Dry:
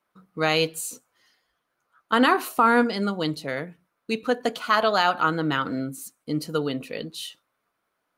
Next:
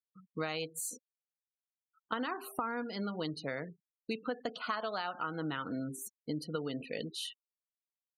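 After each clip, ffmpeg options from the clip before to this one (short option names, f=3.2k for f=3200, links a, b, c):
-af "bandreject=f=395.3:t=h:w=4,bandreject=f=790.6:t=h:w=4,acompressor=threshold=-28dB:ratio=12,afftfilt=real='re*gte(hypot(re,im),0.00794)':imag='im*gte(hypot(re,im),0.00794)':win_size=1024:overlap=0.75,volume=-4.5dB"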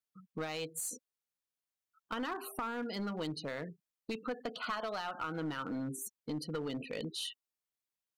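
-filter_complex "[0:a]asplit=2[a][b];[b]alimiter=level_in=7.5dB:limit=-24dB:level=0:latency=1:release=35,volume=-7.5dB,volume=1dB[c];[a][c]amix=inputs=2:normalize=0,aeval=exprs='clip(val(0),-1,0.0422)':c=same,volume=-5dB"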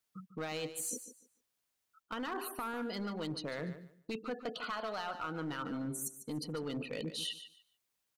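-af "areverse,acompressor=threshold=-46dB:ratio=5,areverse,aecho=1:1:147|294|441:0.251|0.0527|0.0111,volume=8.5dB"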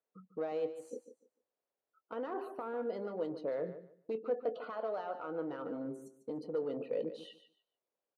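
-filter_complex "[0:a]bandpass=f=510:t=q:w=2.4:csg=0,asplit=2[a][b];[b]adelay=22,volume=-14dB[c];[a][c]amix=inputs=2:normalize=0,volume=7.5dB"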